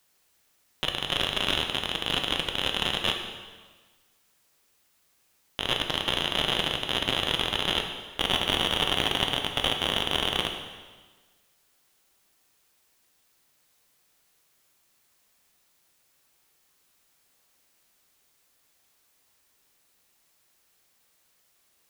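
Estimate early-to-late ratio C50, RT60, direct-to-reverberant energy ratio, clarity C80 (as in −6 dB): 6.0 dB, 1.4 s, 3.5 dB, 7.5 dB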